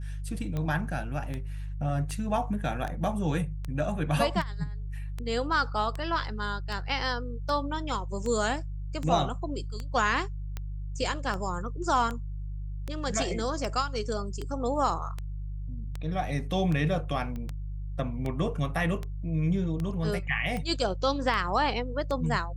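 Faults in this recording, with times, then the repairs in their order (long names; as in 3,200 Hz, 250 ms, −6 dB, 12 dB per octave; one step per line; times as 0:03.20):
mains hum 50 Hz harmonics 3 −35 dBFS
scratch tick 78 rpm −21 dBFS
0:17.36: click −26 dBFS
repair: click removal
hum removal 50 Hz, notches 3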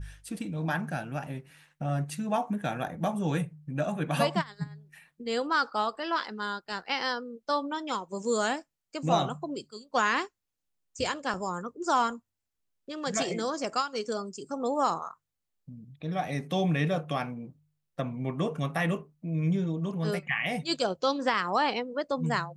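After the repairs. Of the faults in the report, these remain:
none of them is left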